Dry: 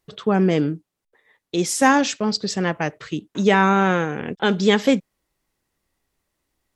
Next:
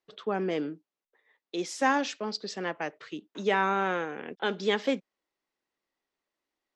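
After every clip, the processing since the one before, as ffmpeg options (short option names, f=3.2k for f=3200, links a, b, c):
-filter_complex "[0:a]acrossover=split=240 6300:gain=0.1 1 0.112[a][b][c];[a][b][c]amix=inputs=3:normalize=0,volume=-8.5dB"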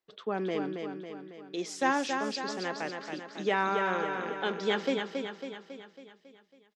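-af "aecho=1:1:275|550|825|1100|1375|1650|1925:0.531|0.292|0.161|0.0883|0.0486|0.0267|0.0147,volume=-2.5dB"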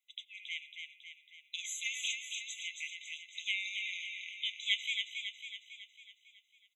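-af "afftfilt=real='re*eq(mod(floor(b*sr/1024/2000),2),1)':imag='im*eq(mod(floor(b*sr/1024/2000),2),1)':win_size=1024:overlap=0.75,volume=5.5dB"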